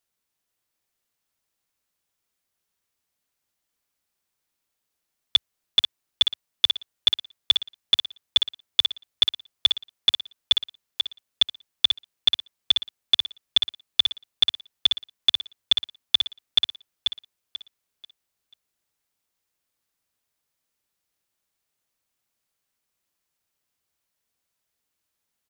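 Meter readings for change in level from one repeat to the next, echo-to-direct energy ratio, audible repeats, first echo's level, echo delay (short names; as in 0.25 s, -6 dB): -10.5 dB, -5.5 dB, 3, -6.0 dB, 0.488 s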